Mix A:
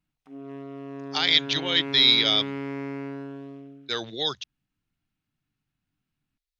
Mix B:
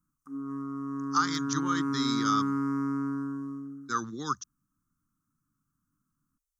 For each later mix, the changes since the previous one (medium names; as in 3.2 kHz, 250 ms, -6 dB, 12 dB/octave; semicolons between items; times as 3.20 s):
master: add FFT filter 120 Hz 0 dB, 190 Hz +4 dB, 280 Hz +5 dB, 660 Hz -25 dB, 1.2 kHz +14 dB, 2.4 kHz -26 dB, 3.8 kHz -21 dB, 6 kHz +6 dB, 8.9 kHz +9 dB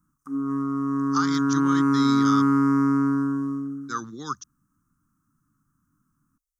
background +9.5 dB